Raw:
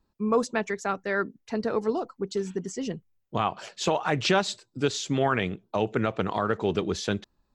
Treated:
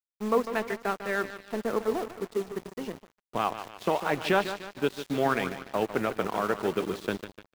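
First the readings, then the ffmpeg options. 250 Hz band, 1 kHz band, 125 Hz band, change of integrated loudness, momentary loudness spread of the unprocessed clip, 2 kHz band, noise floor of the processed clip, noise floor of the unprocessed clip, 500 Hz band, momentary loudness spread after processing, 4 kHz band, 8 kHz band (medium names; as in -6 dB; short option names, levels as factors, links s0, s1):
-3.0 dB, -1.0 dB, -7.0 dB, -2.0 dB, 8 LU, -1.0 dB, under -85 dBFS, -75 dBFS, -1.5 dB, 10 LU, -6.0 dB, -8.5 dB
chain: -af "areverse,acompressor=mode=upward:threshold=0.01:ratio=2.5,areverse,highpass=190,lowpass=2900,acrusher=bits=8:dc=4:mix=0:aa=0.000001,aecho=1:1:149|298|447|596|745|894|1043:0.335|0.191|0.109|0.062|0.0354|0.0202|0.0115,aeval=exprs='sgn(val(0))*max(abs(val(0))-0.0133,0)':c=same"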